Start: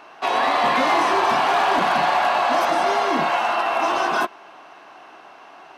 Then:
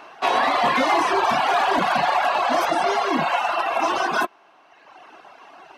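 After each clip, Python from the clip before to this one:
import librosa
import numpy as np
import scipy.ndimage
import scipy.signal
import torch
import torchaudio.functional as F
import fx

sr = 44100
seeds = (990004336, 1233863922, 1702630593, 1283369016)

y = fx.dereverb_blind(x, sr, rt60_s=1.4)
y = y * librosa.db_to_amplitude(2.0)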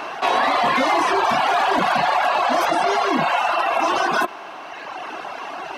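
y = fx.env_flatten(x, sr, amount_pct=50)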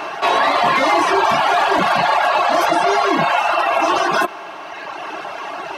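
y = fx.notch_comb(x, sr, f0_hz=250.0)
y = y * librosa.db_to_amplitude(4.5)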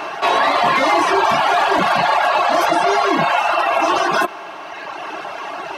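y = x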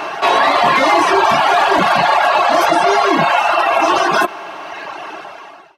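y = fx.fade_out_tail(x, sr, length_s=1.04)
y = y * librosa.db_to_amplitude(3.0)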